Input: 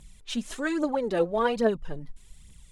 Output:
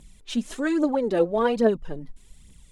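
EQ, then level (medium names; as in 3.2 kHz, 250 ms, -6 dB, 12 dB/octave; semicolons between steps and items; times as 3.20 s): FFT filter 140 Hz 0 dB, 260 Hz +6 dB, 1.2 kHz 0 dB; 0.0 dB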